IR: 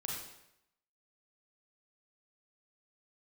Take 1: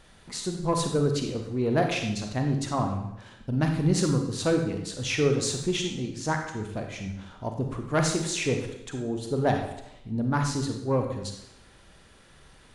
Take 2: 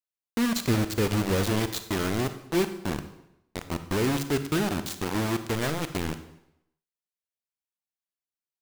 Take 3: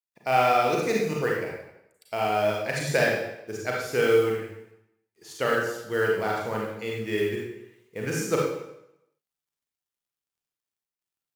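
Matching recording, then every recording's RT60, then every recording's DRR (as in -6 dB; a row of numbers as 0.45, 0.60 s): 3; 0.80, 0.80, 0.80 s; 3.5, 9.5, -2.5 dB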